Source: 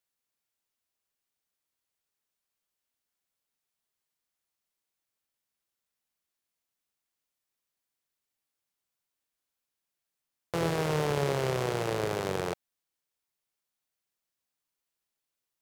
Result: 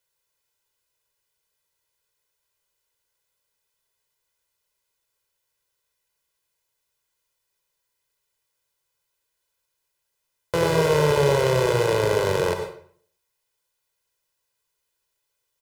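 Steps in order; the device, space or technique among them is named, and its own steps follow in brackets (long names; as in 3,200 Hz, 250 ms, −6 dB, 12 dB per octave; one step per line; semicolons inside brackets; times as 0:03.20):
microphone above a desk (comb filter 2 ms, depth 85%; convolution reverb RT60 0.55 s, pre-delay 87 ms, DRR 6 dB)
level +5.5 dB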